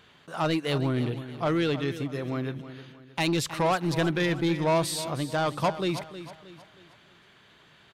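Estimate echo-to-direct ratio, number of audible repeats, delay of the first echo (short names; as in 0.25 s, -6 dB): -12.0 dB, 3, 0.315 s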